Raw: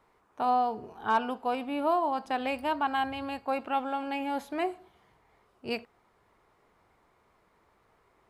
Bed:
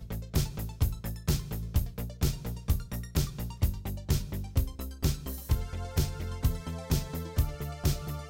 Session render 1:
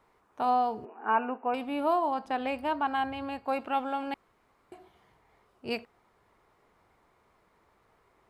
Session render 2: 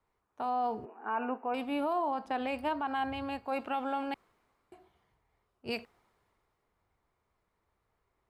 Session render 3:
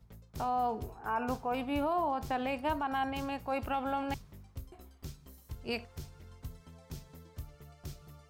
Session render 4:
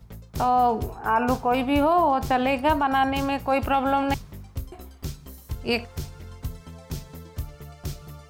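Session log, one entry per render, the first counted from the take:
0.85–1.54 brick-wall FIR band-pass 210–2900 Hz; 2.14–3.45 high shelf 3500 Hz -7 dB; 4.14–4.72 room tone
limiter -24.5 dBFS, peak gain reduction 8.5 dB; three-band expander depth 40%
add bed -16.5 dB
gain +11.5 dB

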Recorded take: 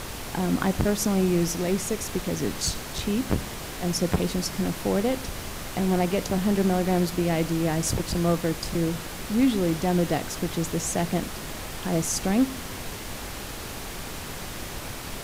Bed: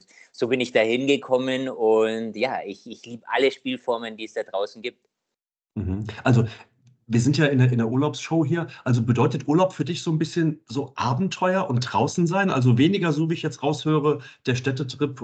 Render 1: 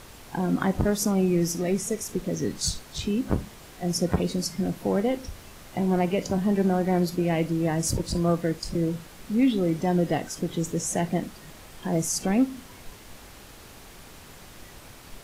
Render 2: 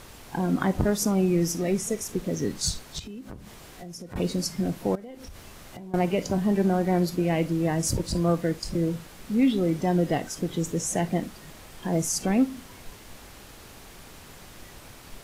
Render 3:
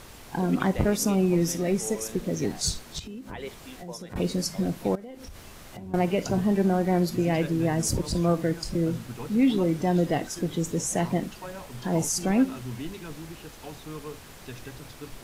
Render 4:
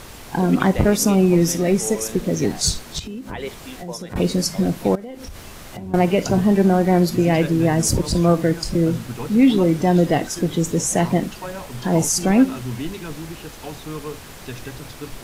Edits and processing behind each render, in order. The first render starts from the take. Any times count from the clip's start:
noise print and reduce 11 dB
2.99–4.16 compressor 5:1, threshold -38 dBFS; 4.95–5.94 compressor 16:1, threshold -37 dBFS
add bed -18.5 dB
gain +7.5 dB; limiter -3 dBFS, peak gain reduction 1 dB

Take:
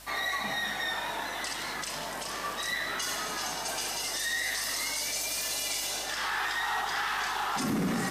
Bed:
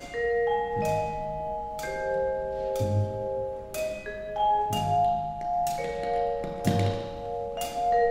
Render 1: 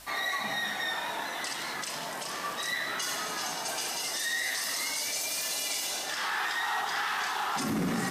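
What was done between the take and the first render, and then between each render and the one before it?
de-hum 50 Hz, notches 12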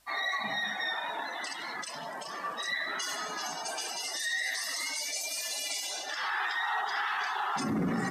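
denoiser 16 dB, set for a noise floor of -37 dBFS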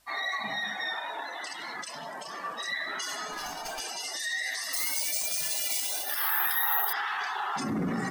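0.99–1.54 Chebyshev high-pass 360 Hz; 3.32–3.8 running maximum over 3 samples; 4.73–6.93 careless resampling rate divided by 3×, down none, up zero stuff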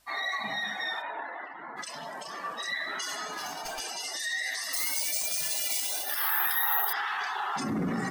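1.01–1.76 LPF 2900 Hz -> 1400 Hz 24 dB/oct; 3.15–3.64 HPF 110 Hz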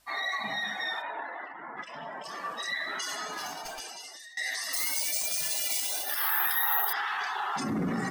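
1.52–2.24 polynomial smoothing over 25 samples; 3.42–4.37 fade out linear, to -23 dB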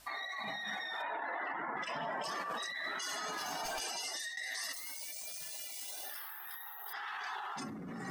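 negative-ratio compressor -40 dBFS, ratio -1; limiter -30 dBFS, peak gain reduction 7.5 dB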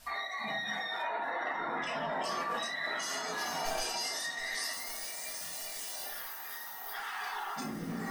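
swung echo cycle 1.227 s, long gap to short 1.5:1, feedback 56%, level -15 dB; shoebox room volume 140 m³, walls furnished, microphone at 1.7 m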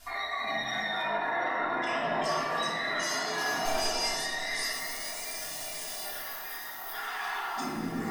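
shoebox room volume 3600 m³, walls mixed, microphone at 3.2 m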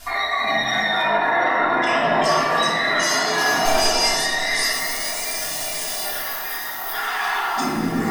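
gain +11.5 dB

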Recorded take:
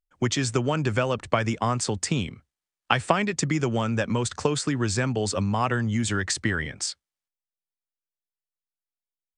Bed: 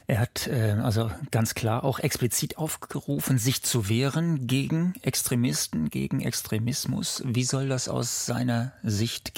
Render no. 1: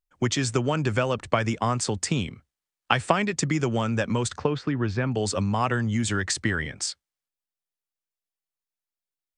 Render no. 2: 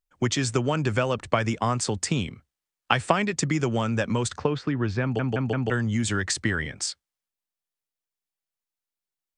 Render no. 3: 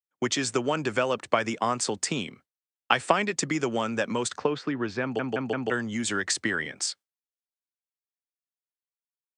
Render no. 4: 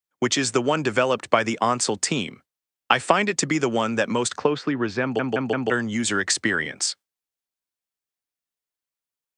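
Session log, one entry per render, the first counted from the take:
4.38–5.12 air absorption 290 m
5.02 stutter in place 0.17 s, 4 plays
HPF 250 Hz 12 dB/oct; gate with hold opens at -38 dBFS
gain +5 dB; limiter -1 dBFS, peak gain reduction 2.5 dB

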